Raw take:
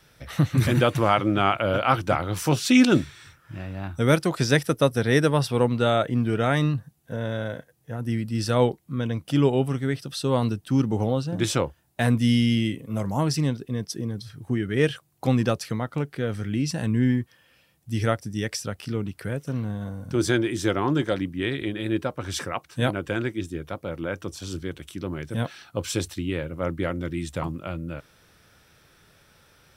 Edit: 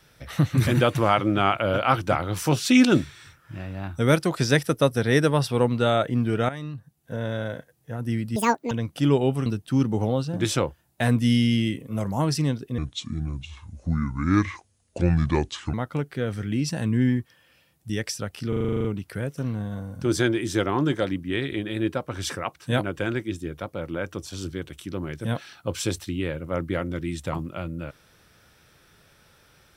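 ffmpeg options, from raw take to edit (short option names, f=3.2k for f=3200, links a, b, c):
-filter_complex "[0:a]asplit=17[a][b][c][d][e][f][g][h][i][j][k][l][m][n][o][p][q];[a]atrim=end=6.49,asetpts=PTS-STARTPTS,afade=t=out:st=6.486:d=0.004:c=hsin:silence=0.211349[r];[b]atrim=start=6.49:end=8.364,asetpts=PTS-STARTPTS,afade=t=in:d=0.66:c=qua:silence=0.211349[s];[c]atrim=start=8.36:end=9.03,asetpts=PTS-STARTPTS,asetrate=84231,aresample=44100[t];[d]atrim=start=9.026:end=9.782[u];[e]atrim=start=10.448:end=13.774[v];[f]atrim=start=13.77:end=15.75,asetpts=PTS-STARTPTS,asetrate=29547,aresample=44100,atrim=end_sample=130325,asetpts=PTS-STARTPTS[w];[g]atrim=start=15.746:end=17.912[x];[h]atrim=start=18.348:end=18.982[y];[i]atrim=start=18.938:end=18.982[z];[j]atrim=start=18.938:end=18.982[aa];[k]atrim=start=18.938:end=18.982[ab];[l]atrim=start=18.938:end=18.982[ac];[m]atrim=start=18.938:end=18.982[ad];[n]atrim=start=18.938:end=18.982[ae];[o]atrim=start=18.938:end=18.982[af];[p]atrim=start=18.938:end=18.982[ag];[q]atrim=start=18.938[ah];[r][s]concat=n=2:v=0:a=1[ai];[ai][t]acrossfade=d=0.004:c1=hsin:c2=hsin[aj];[aj][u]acrossfade=d=0.004:c1=hsin:c2=hsin[ak];[ak][v]acrossfade=d=0.004:c1=hsin:c2=hsin[al];[al][w]acrossfade=d=0.004:c1=hsin:c2=hsin[am];[am][x]acrossfade=d=0.004:c1=hsin:c2=hsin[an];[an][y]acrossfade=d=0.004:c1=hsin:c2=hsin[ao];[ao][z]acrossfade=d=0.004:c1=hsin:c2=hsin[ap];[ap][aa]acrossfade=d=0.004:c1=hsin:c2=hsin[aq];[aq][ab]acrossfade=d=0.004:c1=hsin:c2=hsin[ar];[ar][ac]acrossfade=d=0.004:c1=hsin:c2=hsin[as];[as][ad]acrossfade=d=0.004:c1=hsin:c2=hsin[at];[at][ae]acrossfade=d=0.004:c1=hsin:c2=hsin[au];[au][af]acrossfade=d=0.004:c1=hsin:c2=hsin[av];[av][ag]acrossfade=d=0.004:c1=hsin:c2=hsin[aw];[aw][ah]acrossfade=d=0.004:c1=hsin:c2=hsin"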